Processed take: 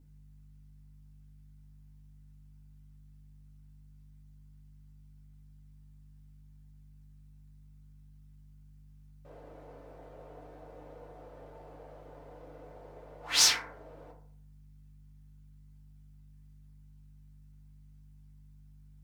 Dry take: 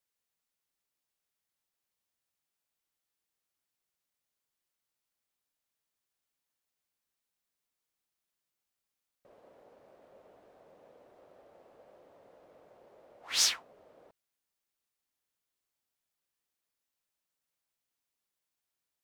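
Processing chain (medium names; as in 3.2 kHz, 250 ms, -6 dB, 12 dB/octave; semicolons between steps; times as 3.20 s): hum 50 Hz, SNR 15 dB; FDN reverb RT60 0.56 s, low-frequency decay 0.8×, high-frequency decay 0.35×, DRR -4 dB; trim +1.5 dB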